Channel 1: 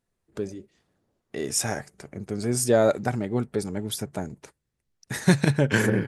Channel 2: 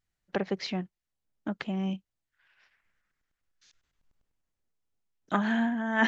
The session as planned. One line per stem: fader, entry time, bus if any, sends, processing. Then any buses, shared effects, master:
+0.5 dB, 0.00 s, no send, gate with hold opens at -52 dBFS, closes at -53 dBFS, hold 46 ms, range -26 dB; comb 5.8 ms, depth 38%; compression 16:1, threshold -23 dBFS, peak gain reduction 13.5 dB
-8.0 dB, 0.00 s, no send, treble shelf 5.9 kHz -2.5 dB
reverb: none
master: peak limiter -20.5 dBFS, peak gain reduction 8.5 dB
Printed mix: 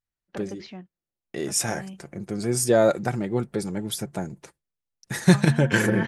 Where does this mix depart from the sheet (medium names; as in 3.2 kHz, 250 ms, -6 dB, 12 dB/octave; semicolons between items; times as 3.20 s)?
stem 1: missing compression 16:1, threshold -23 dBFS, peak gain reduction 13.5 dB; master: missing peak limiter -20.5 dBFS, peak gain reduction 8.5 dB